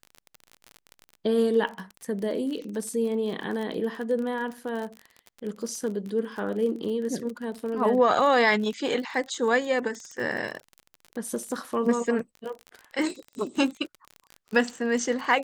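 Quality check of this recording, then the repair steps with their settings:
crackle 35 per s -32 dBFS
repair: de-click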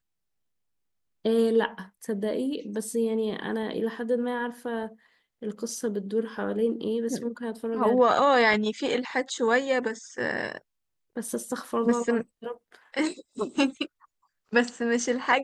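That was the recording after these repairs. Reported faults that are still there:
nothing left

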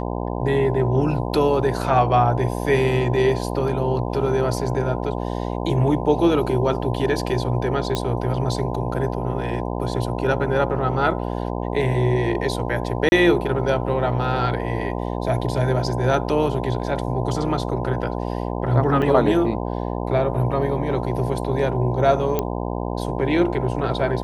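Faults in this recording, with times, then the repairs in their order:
buzz 60 Hz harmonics 17 -26 dBFS
7.95 s: pop -9 dBFS
13.09–13.12 s: dropout 31 ms
19.02 s: dropout 4.4 ms
22.39 s: pop -8 dBFS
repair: de-click; de-hum 60 Hz, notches 17; interpolate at 13.09 s, 31 ms; interpolate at 19.02 s, 4.4 ms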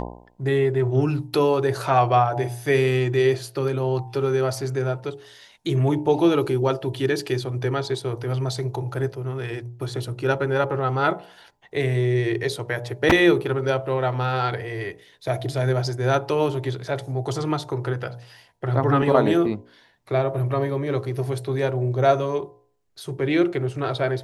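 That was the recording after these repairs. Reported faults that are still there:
nothing left

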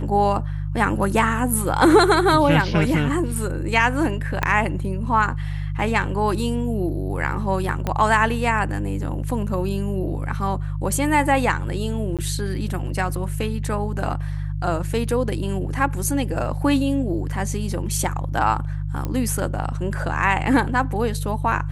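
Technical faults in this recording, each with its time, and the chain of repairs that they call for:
hum 50 Hz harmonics 3 -26 dBFS
4.43 s: pop -7 dBFS
7.87 s: pop -10 dBFS
12.17–12.19 s: dropout 17 ms
19.05 s: pop -14 dBFS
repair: de-click; de-hum 50 Hz, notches 3; interpolate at 12.17 s, 17 ms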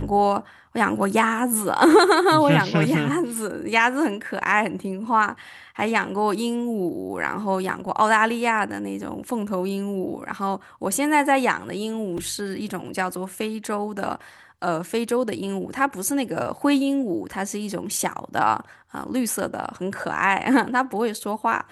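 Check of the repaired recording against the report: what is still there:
4.43 s: pop
7.87 s: pop

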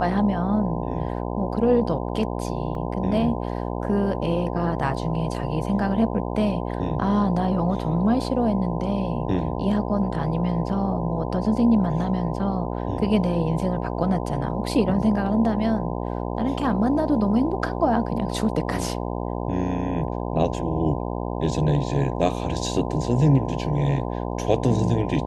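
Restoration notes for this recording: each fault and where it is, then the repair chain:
buzz 60 Hz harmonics 17 -28 dBFS
2.75 s: dropout 2 ms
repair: de-hum 60 Hz, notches 17; interpolate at 2.75 s, 2 ms

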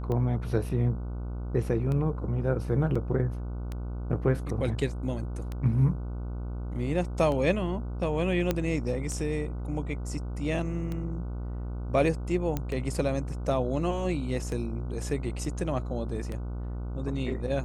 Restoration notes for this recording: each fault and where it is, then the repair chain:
buzz 60 Hz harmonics 25 -34 dBFS
tick 33 1/3 rpm -22 dBFS
2.95–2.96 s: dropout 5.2 ms
8.51 s: pop -12 dBFS
12.57 s: pop -16 dBFS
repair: de-click; de-hum 60 Hz, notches 25; interpolate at 2.95 s, 5.2 ms

